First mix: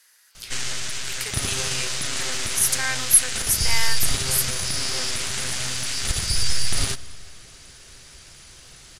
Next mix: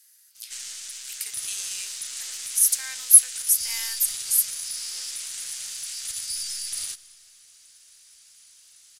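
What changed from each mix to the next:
background −4.0 dB
master: add first-order pre-emphasis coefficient 0.97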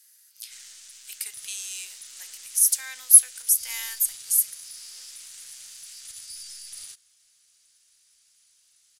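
background −9.0 dB
reverb: off

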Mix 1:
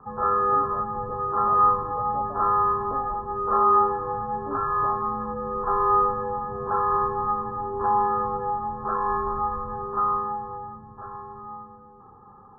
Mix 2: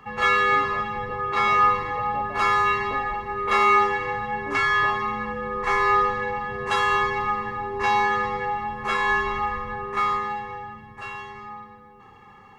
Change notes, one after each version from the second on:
master: remove Butterworth low-pass 1,500 Hz 96 dB per octave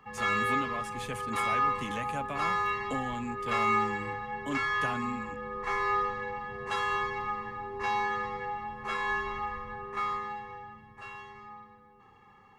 speech: remove linear-phase brick-wall band-pass 270–1,000 Hz
background −9.0 dB

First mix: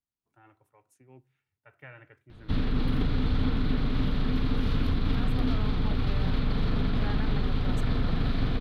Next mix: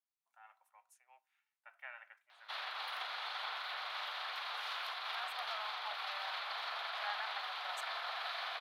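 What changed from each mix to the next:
master: add Butterworth high-pass 680 Hz 48 dB per octave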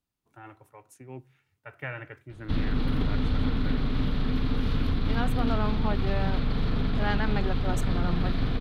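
speech +11.5 dB
master: remove Butterworth high-pass 680 Hz 48 dB per octave

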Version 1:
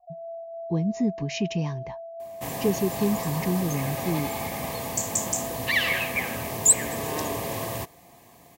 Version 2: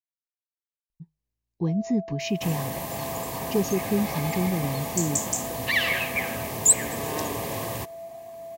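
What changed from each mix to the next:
speech: entry +0.90 s
first sound: entry +1.60 s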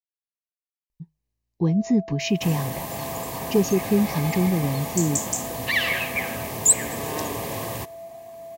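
speech +4.5 dB
second sound: send +11.5 dB

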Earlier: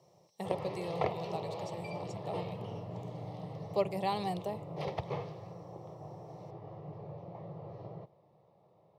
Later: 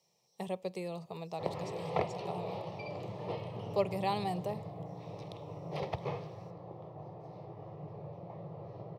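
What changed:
background: entry +0.95 s
master: remove notch filter 2,500 Hz, Q 28

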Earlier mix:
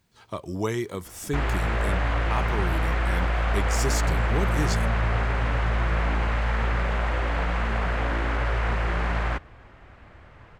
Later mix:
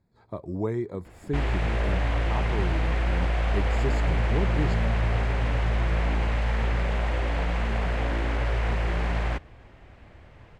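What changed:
speech: add moving average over 15 samples
master: add parametric band 1,300 Hz −7 dB 0.98 octaves

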